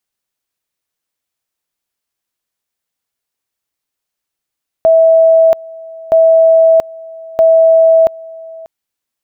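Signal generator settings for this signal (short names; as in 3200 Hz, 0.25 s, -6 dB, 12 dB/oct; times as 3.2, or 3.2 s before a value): two-level tone 652 Hz -4 dBFS, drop 23 dB, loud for 0.68 s, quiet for 0.59 s, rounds 3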